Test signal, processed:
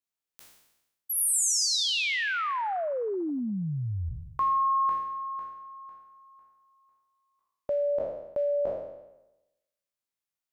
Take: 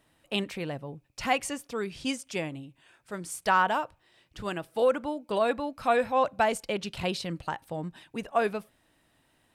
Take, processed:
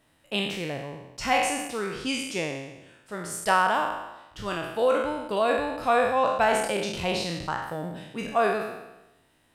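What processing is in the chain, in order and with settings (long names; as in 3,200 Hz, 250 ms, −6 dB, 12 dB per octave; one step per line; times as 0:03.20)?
peak hold with a decay on every bin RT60 0.98 s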